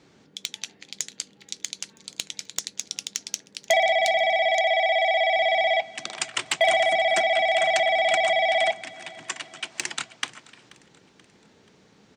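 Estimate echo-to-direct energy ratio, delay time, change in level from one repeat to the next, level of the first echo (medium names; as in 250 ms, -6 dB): -21.5 dB, 482 ms, -6.5 dB, -22.5 dB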